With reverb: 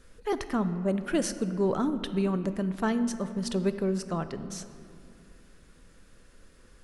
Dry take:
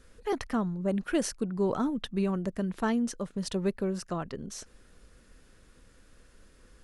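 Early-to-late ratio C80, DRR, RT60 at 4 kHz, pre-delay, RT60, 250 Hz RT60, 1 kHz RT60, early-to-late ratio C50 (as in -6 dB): 12.5 dB, 10.0 dB, 1.3 s, 5 ms, 2.3 s, 2.9 s, 2.2 s, 12.0 dB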